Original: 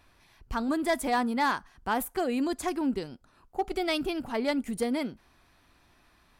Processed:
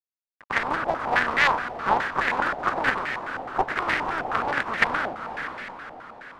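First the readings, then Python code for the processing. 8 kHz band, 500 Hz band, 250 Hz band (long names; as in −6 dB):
can't be measured, +0.5 dB, −7.5 dB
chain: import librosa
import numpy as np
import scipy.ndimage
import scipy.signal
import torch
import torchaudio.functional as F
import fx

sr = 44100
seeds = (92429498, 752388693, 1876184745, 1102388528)

p1 = fx.spec_flatten(x, sr, power=0.14)
p2 = fx.highpass(p1, sr, hz=110.0, slope=6)
p3 = fx.rider(p2, sr, range_db=10, speed_s=0.5)
p4 = p2 + (p3 * 10.0 ** (-1.0 / 20.0))
p5 = fx.quant_companded(p4, sr, bits=2)
p6 = p5 + fx.echo_diffused(p5, sr, ms=503, feedback_pct=50, wet_db=-8, dry=0)
p7 = fx.filter_held_lowpass(p6, sr, hz=9.5, low_hz=750.0, high_hz=1900.0)
y = p7 * 10.0 ** (-1.0 / 20.0)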